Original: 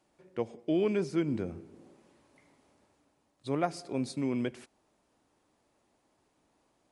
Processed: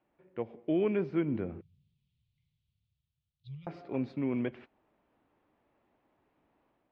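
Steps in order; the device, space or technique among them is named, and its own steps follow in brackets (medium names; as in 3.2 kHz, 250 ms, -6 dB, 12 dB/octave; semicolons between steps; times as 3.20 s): 1.61–3.67 s: elliptic band-stop 130–3600 Hz, stop band 40 dB; action camera in a waterproof case (low-pass 2.8 kHz 24 dB/octave; level rider gain up to 4 dB; trim -4.5 dB; AAC 48 kbps 44.1 kHz)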